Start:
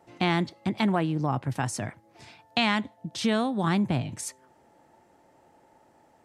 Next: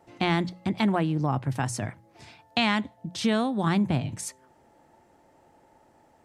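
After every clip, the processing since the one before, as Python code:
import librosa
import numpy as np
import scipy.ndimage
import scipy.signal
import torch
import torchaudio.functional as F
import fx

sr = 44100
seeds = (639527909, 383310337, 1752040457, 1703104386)

y = fx.low_shelf(x, sr, hz=91.0, db=7.5)
y = fx.hum_notches(y, sr, base_hz=60, count=3)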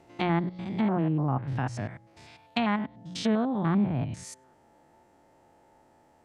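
y = fx.spec_steps(x, sr, hold_ms=100)
y = fx.env_lowpass_down(y, sr, base_hz=1700.0, full_db=-23.0)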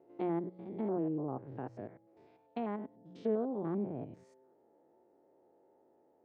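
y = fx.bandpass_q(x, sr, hz=420.0, q=2.6)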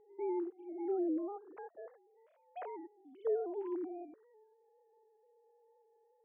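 y = fx.sine_speech(x, sr)
y = y * 10.0 ** (-2.0 / 20.0)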